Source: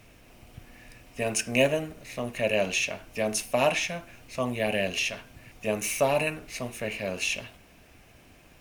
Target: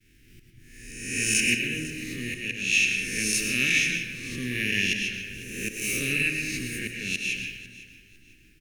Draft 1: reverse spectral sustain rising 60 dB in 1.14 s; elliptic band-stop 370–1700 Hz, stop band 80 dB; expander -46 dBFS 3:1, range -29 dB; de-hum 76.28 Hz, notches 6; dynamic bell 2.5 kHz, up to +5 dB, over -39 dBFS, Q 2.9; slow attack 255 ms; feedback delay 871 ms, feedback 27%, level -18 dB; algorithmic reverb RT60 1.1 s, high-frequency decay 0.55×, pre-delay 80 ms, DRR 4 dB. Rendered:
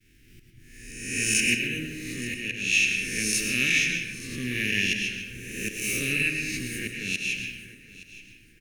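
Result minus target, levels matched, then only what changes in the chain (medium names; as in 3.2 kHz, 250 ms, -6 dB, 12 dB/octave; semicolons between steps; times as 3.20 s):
echo 370 ms late
change: feedback delay 501 ms, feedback 27%, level -18 dB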